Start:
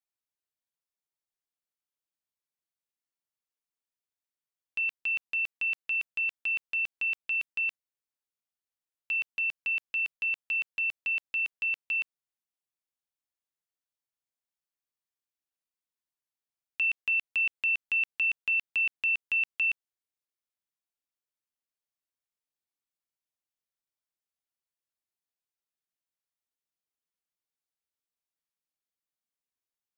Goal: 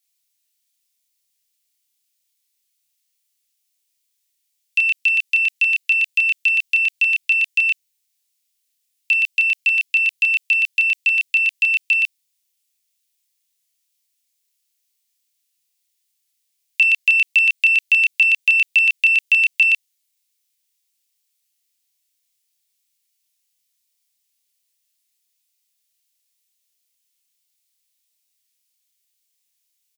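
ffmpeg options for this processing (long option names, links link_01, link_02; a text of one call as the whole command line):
ffmpeg -i in.wav -filter_complex "[0:a]aexciter=amount=6.9:drive=4.3:freq=2000,asplit=2[link_01][link_02];[link_02]adelay=30,volume=-2.5dB[link_03];[link_01][link_03]amix=inputs=2:normalize=0" out.wav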